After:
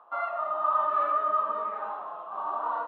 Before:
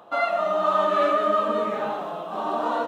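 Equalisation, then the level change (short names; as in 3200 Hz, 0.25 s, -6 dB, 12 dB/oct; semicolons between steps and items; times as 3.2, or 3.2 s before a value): band-pass 1100 Hz, Q 3.1; air absorption 64 m; 0.0 dB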